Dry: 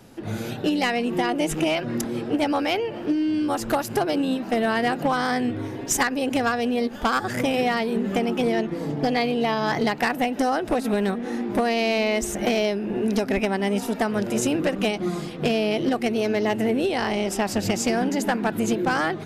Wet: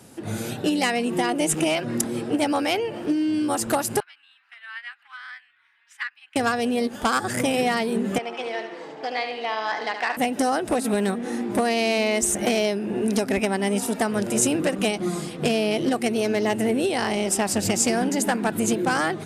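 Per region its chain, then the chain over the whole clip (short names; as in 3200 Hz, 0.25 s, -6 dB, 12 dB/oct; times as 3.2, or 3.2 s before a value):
4–6.36 inverse Chebyshev high-pass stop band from 580 Hz, stop band 50 dB + air absorption 420 m + upward expander, over -48 dBFS
8.18–10.17 HPF 720 Hz + air absorption 160 m + feedback echo 73 ms, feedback 53%, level -8.5 dB
whole clip: HPF 63 Hz; bell 9000 Hz +12 dB 0.77 oct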